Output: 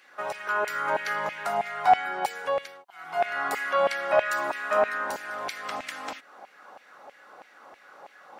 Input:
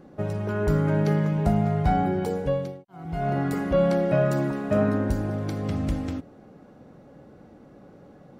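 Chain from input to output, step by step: in parallel at -2 dB: compression, threshold -35 dBFS, peak gain reduction 17 dB; on the sum: LFO high-pass saw down 3.1 Hz 780–2400 Hz; trim +3 dB

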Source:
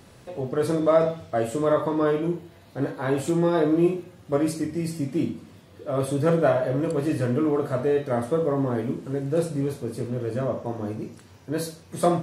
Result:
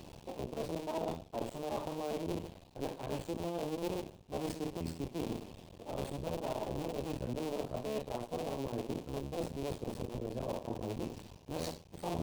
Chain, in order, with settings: cycle switcher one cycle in 2, muted; reverse; compression 6:1, threshold -37 dBFS, peak gain reduction 20 dB; reverse; high-order bell 1.6 kHz -10.5 dB 1 oct; sliding maximum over 3 samples; trim +2 dB

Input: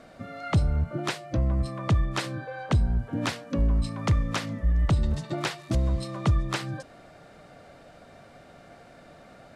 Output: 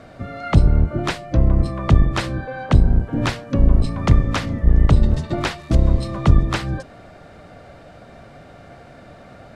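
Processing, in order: octave divider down 1 oct, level 0 dB; treble shelf 5.1 kHz -6.5 dB; trim +7 dB

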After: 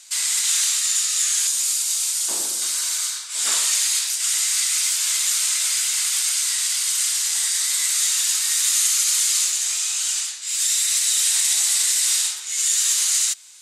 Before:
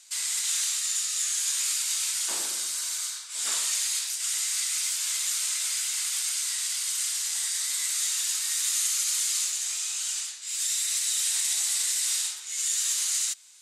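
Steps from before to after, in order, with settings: 1.47–2.62 s: peaking EQ 1.9 kHz -8.5 dB 2.2 oct; trim +7.5 dB

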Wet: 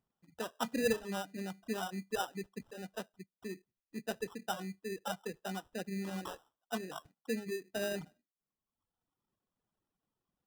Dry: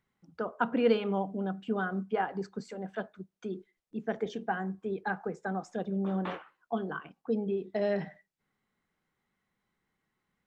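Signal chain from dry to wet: sample-rate reducer 2.2 kHz, jitter 0%; reverb removal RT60 1.1 s; trim -5.5 dB

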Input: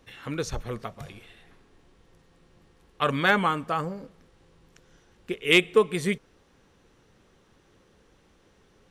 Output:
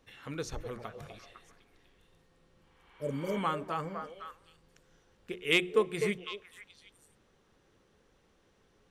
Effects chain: spectral replace 2.57–3.35 s, 660–4500 Hz both; hum notches 60/120/180/240/300/360 Hz; repeats whose band climbs or falls 252 ms, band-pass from 560 Hz, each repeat 1.4 oct, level -5 dB; trim -7 dB

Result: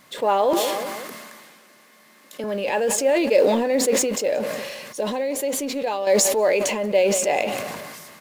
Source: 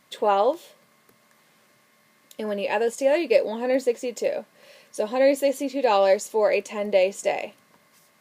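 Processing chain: companding laws mixed up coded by mu; 0.53–2.44 s: high-pass 190 Hz 24 dB/octave; 5.00–6.07 s: compression 6:1, threshold -23 dBFS, peak gain reduction 9 dB; feedback delay 181 ms, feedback 47%, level -21 dB; decay stretcher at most 31 dB/s

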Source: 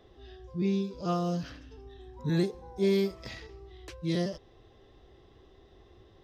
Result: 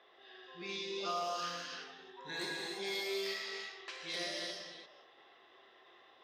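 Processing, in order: chunks repeated in reverse 196 ms, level -11 dB; Bessel high-pass 1.4 kHz, order 2; level-controlled noise filter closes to 2.4 kHz, open at -38 dBFS; tremolo saw down 2.9 Hz, depth 45%; compression 2.5:1, threshold -49 dBFS, peak gain reduction 8.5 dB; gated-style reverb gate 370 ms flat, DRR -3.5 dB; trim +7 dB

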